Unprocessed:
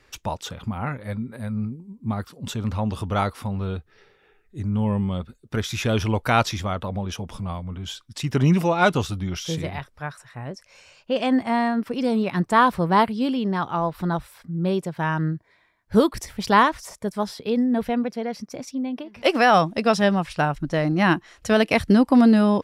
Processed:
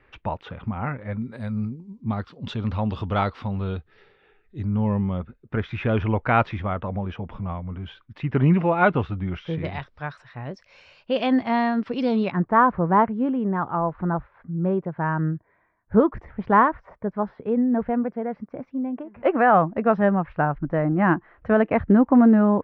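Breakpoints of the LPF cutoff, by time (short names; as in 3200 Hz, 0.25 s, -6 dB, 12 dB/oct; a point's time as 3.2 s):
LPF 24 dB/oct
2600 Hz
from 1.22 s 6400 Hz
from 2.01 s 4000 Hz
from 4.66 s 2400 Hz
from 9.65 s 4400 Hz
from 12.32 s 1700 Hz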